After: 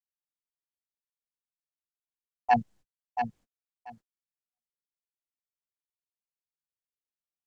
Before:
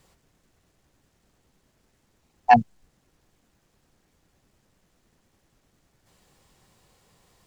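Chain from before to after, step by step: on a send: feedback delay 680 ms, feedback 16%, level -7.5 dB; on the sum: gate -44 dBFS, range -44 dB; trim -8 dB

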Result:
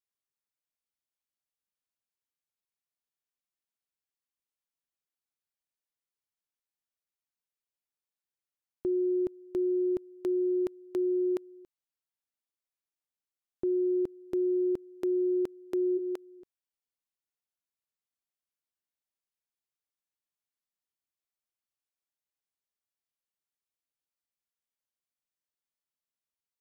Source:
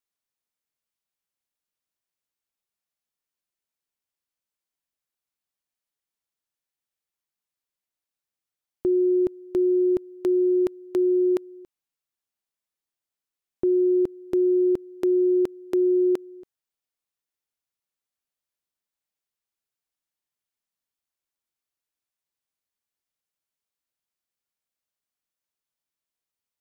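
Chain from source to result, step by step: 15.97–16.39 s: high-pass 560 Hz -> 260 Hz 12 dB/octave; trim -7.5 dB

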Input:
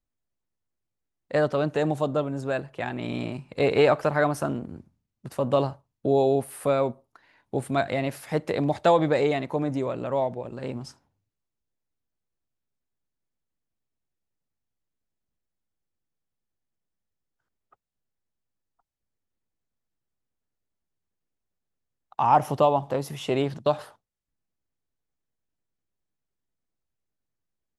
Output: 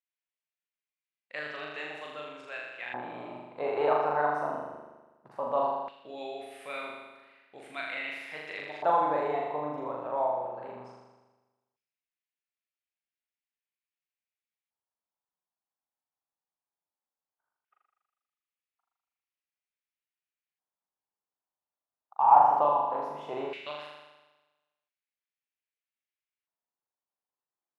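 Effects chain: flutter echo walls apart 6.9 m, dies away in 1.2 s; LFO band-pass square 0.17 Hz 910–2400 Hz; trim -1 dB

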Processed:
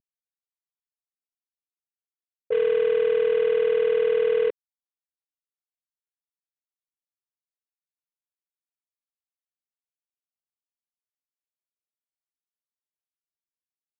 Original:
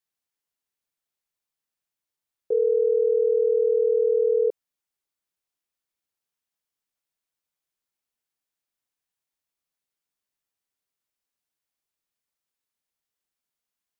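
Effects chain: CVSD coder 16 kbps; level-controlled noise filter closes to 410 Hz, open at -19.5 dBFS

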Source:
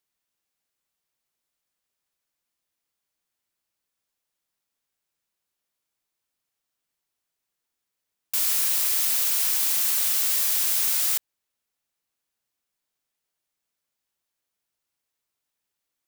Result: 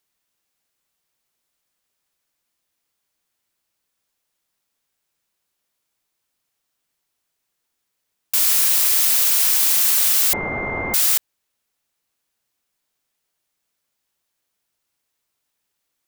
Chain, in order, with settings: 10.33–10.94 s: class-D stage that switches slowly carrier 2.1 kHz; trim +6.5 dB

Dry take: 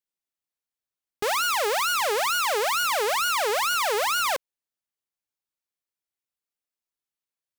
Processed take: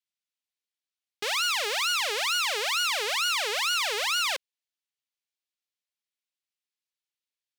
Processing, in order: frequency weighting D; trim -8.5 dB

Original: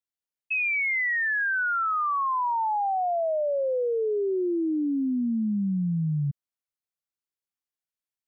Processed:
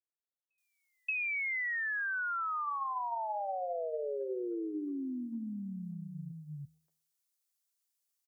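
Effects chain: tone controls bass -14 dB, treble +12 dB; de-hum 79.09 Hz, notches 15; compression 6:1, threshold -34 dBFS, peak gain reduction 10.5 dB; three bands offset in time mids, lows, highs 340/580 ms, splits 160/570 Hz

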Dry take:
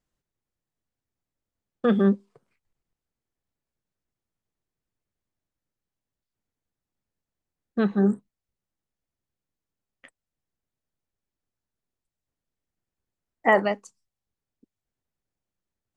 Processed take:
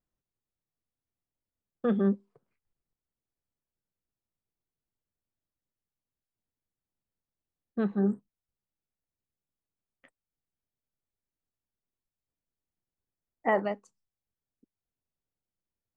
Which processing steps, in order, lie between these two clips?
treble shelf 2.1 kHz -10 dB; trim -5.5 dB

